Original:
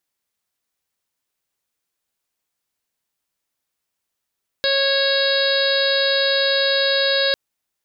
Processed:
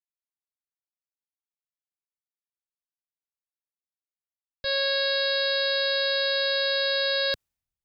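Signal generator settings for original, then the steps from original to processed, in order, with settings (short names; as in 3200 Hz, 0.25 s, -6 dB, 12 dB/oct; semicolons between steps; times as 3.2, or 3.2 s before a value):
steady additive tone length 2.70 s, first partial 550 Hz, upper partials -15.5/-3/-14/-12/-9.5/-1/-4.5/-8 dB, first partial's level -20 dB
limiter -16.5 dBFS; three-band expander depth 100%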